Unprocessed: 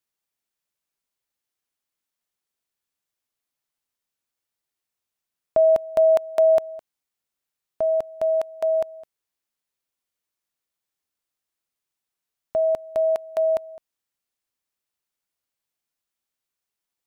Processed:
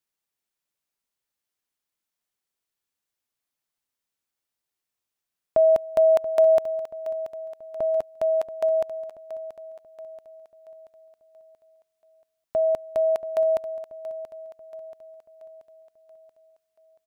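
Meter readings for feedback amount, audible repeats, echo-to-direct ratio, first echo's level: 50%, 4, -12.5 dB, -14.0 dB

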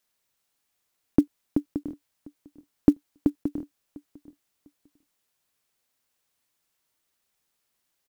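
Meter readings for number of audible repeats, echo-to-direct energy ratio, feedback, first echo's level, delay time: 2, -21.5 dB, 24%, -21.5 dB, 0.7 s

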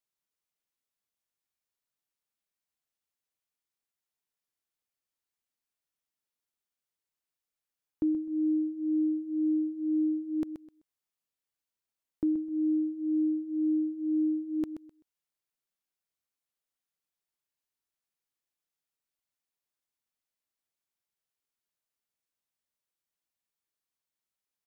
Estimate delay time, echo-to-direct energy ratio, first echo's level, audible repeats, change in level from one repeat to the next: 0.128 s, -10.0 dB, -10.0 dB, 2, -13.0 dB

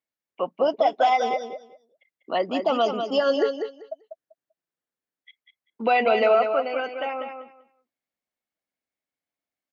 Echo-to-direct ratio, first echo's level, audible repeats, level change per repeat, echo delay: -7.0 dB, -7.0 dB, 2, -15.0 dB, 0.195 s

